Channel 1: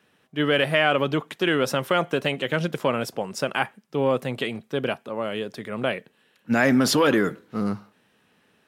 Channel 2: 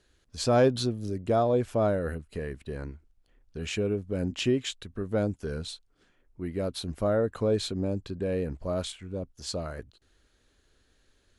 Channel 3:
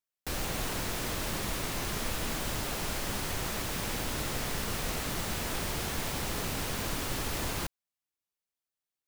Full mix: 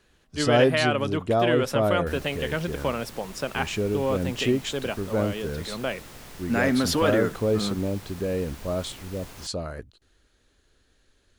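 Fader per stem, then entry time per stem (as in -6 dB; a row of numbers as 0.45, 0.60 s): -4.0, +2.0, -10.5 dB; 0.00, 0.00, 1.80 s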